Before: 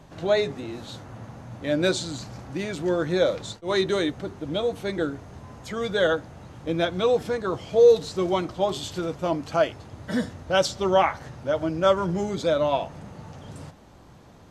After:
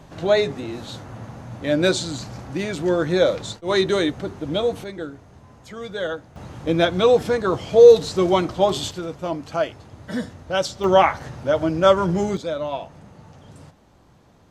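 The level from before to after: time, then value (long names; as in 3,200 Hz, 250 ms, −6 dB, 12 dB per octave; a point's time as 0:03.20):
+4 dB
from 0:04.84 −5 dB
from 0:06.36 +6 dB
from 0:08.91 −1 dB
from 0:10.84 +5 dB
from 0:12.37 −4 dB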